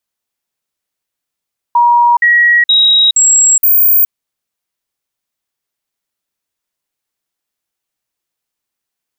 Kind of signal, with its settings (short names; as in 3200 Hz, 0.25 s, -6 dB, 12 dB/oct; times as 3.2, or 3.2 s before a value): stepped sine 954 Hz up, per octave 1, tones 5, 0.42 s, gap 0.05 s -5 dBFS